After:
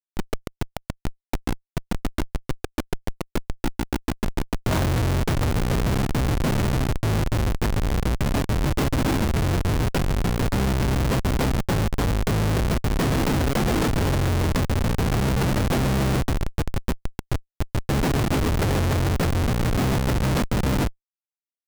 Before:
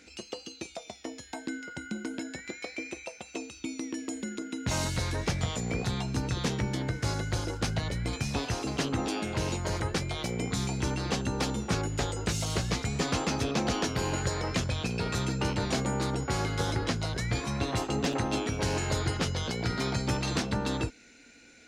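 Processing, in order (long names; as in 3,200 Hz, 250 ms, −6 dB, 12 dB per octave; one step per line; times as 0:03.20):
in parallel at 0 dB: downward compressor 20 to 1, threshold −38 dBFS, peak gain reduction 15.5 dB
0:16.30–0:17.85: on the sum: power curve on the samples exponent 2
comparator with hysteresis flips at −25 dBFS
level +9 dB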